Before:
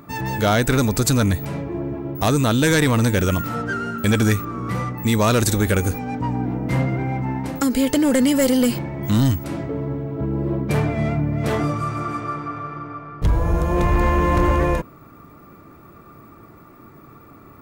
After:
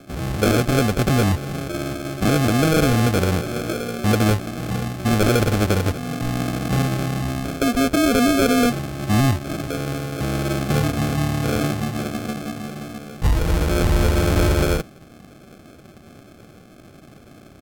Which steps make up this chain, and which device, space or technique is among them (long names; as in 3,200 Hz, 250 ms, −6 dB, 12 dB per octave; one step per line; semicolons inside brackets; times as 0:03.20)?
crushed at another speed (tape speed factor 1.25×; decimation without filtering 37×; tape speed factor 0.8×)